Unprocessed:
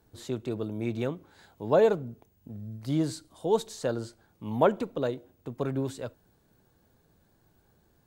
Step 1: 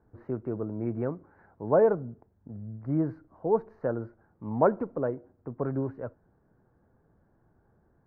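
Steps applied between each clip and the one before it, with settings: inverse Chebyshev low-pass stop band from 3.2 kHz, stop band 40 dB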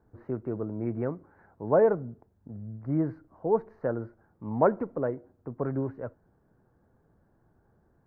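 dynamic bell 2 kHz, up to +5 dB, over -59 dBFS, Q 4.1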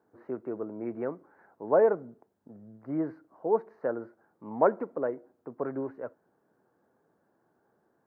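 high-pass 290 Hz 12 dB/octave

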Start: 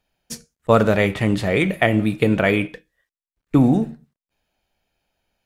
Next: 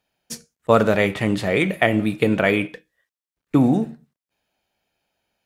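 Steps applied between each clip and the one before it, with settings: high-pass 140 Hz 6 dB/octave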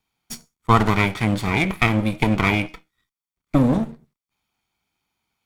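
comb filter that takes the minimum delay 0.88 ms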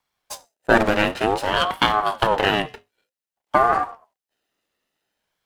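ring modulator with a swept carrier 690 Hz, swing 40%, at 0.53 Hz; trim +2.5 dB

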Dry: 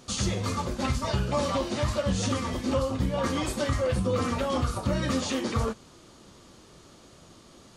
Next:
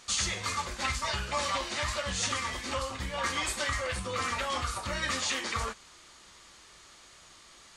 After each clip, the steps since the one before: graphic EQ 125/250/500/1000/2000/4000/8000 Hz -9/-8/-4/+3/+10/+4/+8 dB; trim -5 dB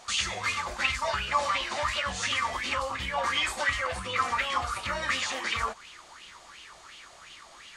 compression 1.5:1, threshold -38 dBFS, peak gain reduction 4.5 dB; sweeping bell 2.8 Hz 680–3000 Hz +16 dB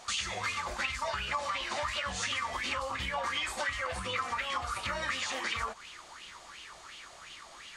compression 4:1, threshold -31 dBFS, peak gain reduction 9.5 dB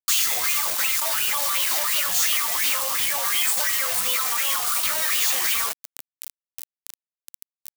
saturation -30.5 dBFS, distortion -14 dB; companded quantiser 2-bit; RIAA curve recording; trim -2.5 dB

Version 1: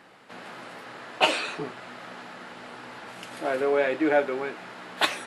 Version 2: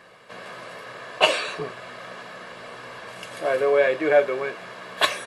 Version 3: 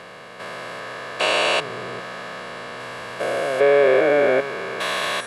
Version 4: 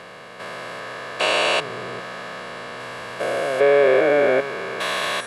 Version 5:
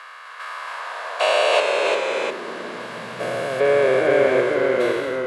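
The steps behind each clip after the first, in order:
comb 1.8 ms, depth 59%; trim +2 dB
spectrogram pixelated in time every 400 ms; trim +7.5 dB
no audible change
fade out at the end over 0.84 s; high-pass sweep 1.2 kHz -> 77 Hz, 0.44–3.91 s; ever faster or slower copies 254 ms, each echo -1 st, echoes 2; trim -2.5 dB

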